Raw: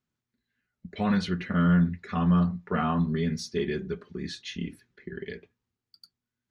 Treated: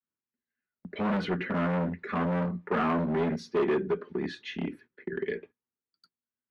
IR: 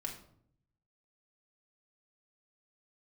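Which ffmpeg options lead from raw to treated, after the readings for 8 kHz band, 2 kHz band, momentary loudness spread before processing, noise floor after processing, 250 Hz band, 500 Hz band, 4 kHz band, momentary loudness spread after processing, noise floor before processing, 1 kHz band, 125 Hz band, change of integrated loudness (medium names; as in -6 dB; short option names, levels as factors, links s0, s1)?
no reading, +1.0 dB, 17 LU, under -85 dBFS, -4.0 dB, +4.5 dB, -5.0 dB, 10 LU, under -85 dBFS, +0.5 dB, -7.0 dB, -3.0 dB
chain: -filter_complex "[0:a]bandreject=f=710:w=12,adynamicequalizer=threshold=0.0141:dfrequency=390:dqfactor=1:tfrequency=390:tqfactor=1:attack=5:release=100:ratio=0.375:range=2:mode=boostabove:tftype=bell,agate=range=0.2:threshold=0.00224:ratio=16:detection=peak,volume=21.1,asoftclip=hard,volume=0.0473,acrossover=split=210 2800:gain=0.2 1 0.112[s0][s1][s2];[s0][s1][s2]amix=inputs=3:normalize=0,volume=1.78"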